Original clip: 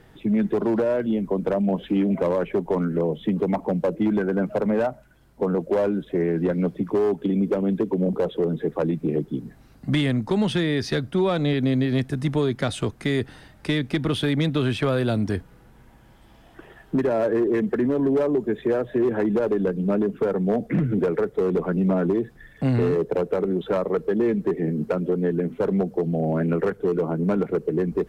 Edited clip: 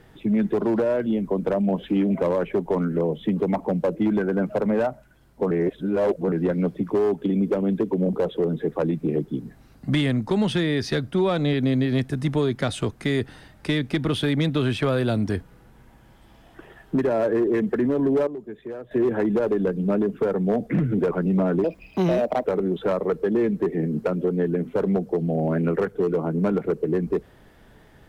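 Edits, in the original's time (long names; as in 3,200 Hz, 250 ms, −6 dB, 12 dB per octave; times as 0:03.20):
0:05.51–0:06.32: reverse
0:18.27–0:18.91: clip gain −12 dB
0:21.11–0:21.62: remove
0:22.15–0:23.29: play speed 142%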